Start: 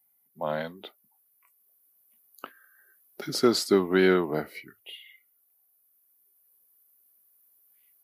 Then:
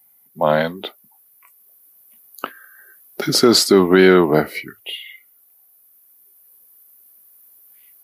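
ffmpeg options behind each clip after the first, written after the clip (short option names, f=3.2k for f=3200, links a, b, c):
-af "alimiter=level_in=15dB:limit=-1dB:release=50:level=0:latency=1,volume=-1dB"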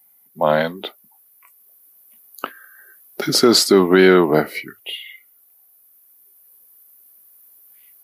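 -af "equalizer=f=69:w=0.92:g=-7.5"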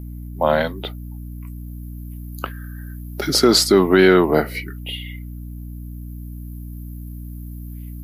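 -af "aeval=exprs='val(0)+0.0316*(sin(2*PI*60*n/s)+sin(2*PI*2*60*n/s)/2+sin(2*PI*3*60*n/s)/3+sin(2*PI*4*60*n/s)/4+sin(2*PI*5*60*n/s)/5)':c=same,volume=-1dB"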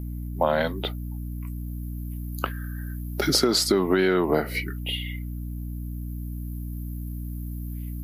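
-af "acompressor=threshold=-17dB:ratio=10"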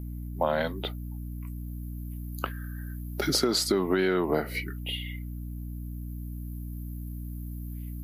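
-af "bandreject=f=5.3k:w=28,volume=-4dB"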